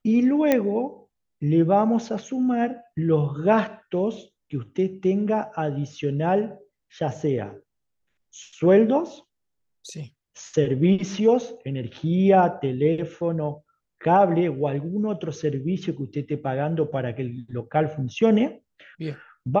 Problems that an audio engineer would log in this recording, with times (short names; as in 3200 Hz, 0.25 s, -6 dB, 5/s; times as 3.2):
0.52 pop -7 dBFS